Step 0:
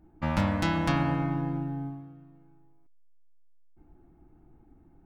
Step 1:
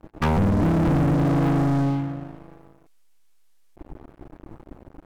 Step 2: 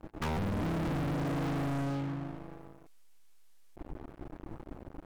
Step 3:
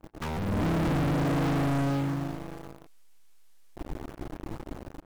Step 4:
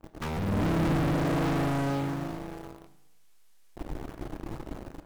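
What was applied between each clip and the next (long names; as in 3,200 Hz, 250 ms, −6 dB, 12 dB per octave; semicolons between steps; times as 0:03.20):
treble cut that deepens with the level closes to 370 Hz, closed at −23 dBFS; leveller curve on the samples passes 5
downward compressor 3 to 1, threshold −23 dBFS, peak gain reduction 4 dB; soft clipping −31.5 dBFS, distortion −12 dB
automatic gain control gain up to 8 dB; in parallel at −6 dB: bit-depth reduction 6 bits, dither none; on the sum: level −5 dB
convolution reverb RT60 0.90 s, pre-delay 6 ms, DRR 10.5 dB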